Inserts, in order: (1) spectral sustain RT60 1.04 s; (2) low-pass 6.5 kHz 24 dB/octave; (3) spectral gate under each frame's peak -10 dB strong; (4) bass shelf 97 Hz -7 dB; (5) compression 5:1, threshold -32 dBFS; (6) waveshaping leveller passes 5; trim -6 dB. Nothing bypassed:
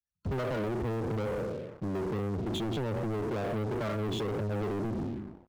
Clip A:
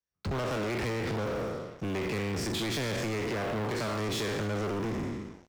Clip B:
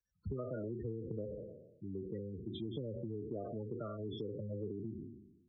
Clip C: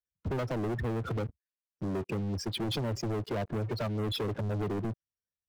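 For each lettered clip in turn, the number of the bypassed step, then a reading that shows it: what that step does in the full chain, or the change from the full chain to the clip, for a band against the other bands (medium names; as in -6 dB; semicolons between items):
3, 8 kHz band +11.0 dB; 6, crest factor change +10.0 dB; 1, 8 kHz band +5.5 dB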